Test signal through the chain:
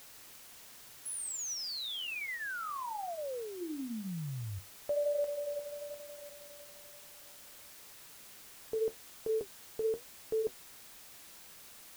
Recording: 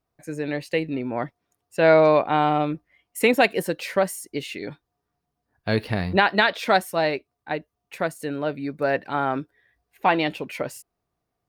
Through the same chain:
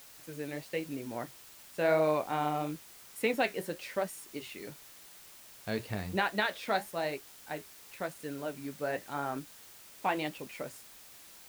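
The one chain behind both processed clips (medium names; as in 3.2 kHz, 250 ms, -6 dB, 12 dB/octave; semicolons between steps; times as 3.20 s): flange 0.97 Hz, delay 5.7 ms, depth 9.5 ms, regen -57%; added noise white -46 dBFS; trim -7.5 dB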